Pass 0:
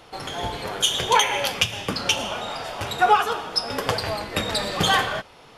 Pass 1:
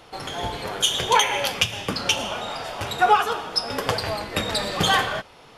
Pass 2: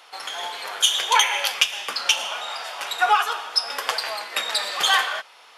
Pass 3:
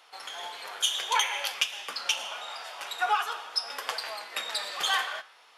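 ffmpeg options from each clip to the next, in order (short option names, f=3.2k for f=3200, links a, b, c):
-af anull
-af "highpass=960,volume=2.5dB"
-af "flanger=delay=6.1:depth=8.3:regen=-88:speed=0.5:shape=triangular,volume=-3.5dB"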